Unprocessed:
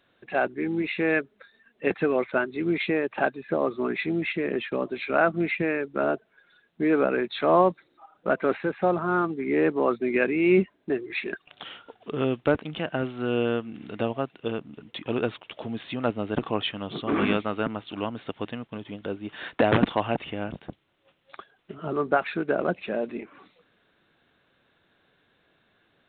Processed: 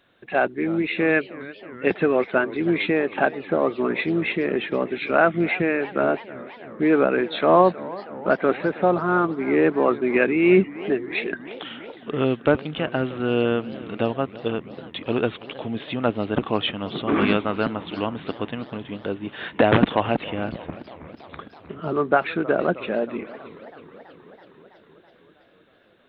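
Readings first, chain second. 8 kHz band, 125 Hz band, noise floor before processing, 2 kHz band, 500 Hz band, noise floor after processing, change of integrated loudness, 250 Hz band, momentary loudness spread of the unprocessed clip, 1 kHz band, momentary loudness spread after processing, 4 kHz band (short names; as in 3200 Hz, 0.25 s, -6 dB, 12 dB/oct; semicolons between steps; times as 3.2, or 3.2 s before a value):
n/a, +4.0 dB, -68 dBFS, +4.0 dB, +4.0 dB, -54 dBFS, +4.0 dB, +4.0 dB, 13 LU, +4.0 dB, 16 LU, +4.0 dB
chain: warbling echo 0.322 s, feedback 72%, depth 208 cents, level -18.5 dB; gain +4 dB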